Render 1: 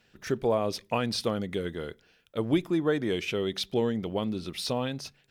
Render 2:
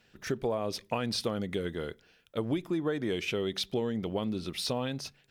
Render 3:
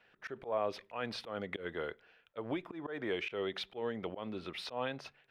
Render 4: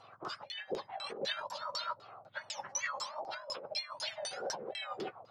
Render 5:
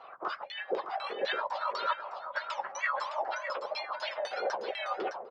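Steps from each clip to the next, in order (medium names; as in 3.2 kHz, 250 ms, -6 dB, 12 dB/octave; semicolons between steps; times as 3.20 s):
compression 5:1, threshold -27 dBFS, peak gain reduction 8 dB
three-band isolator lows -14 dB, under 460 Hz, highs -22 dB, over 2.9 kHz; slow attack 126 ms; trim +2.5 dB
spectrum inverted on a logarithmic axis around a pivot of 1.4 kHz; compressor with a negative ratio -48 dBFS, ratio -1; LFO low-pass saw down 4 Hz 480–6300 Hz; trim +6.5 dB
band-pass 450–2200 Hz; on a send: delay 611 ms -8.5 dB; on the sum: trim +8.5 dB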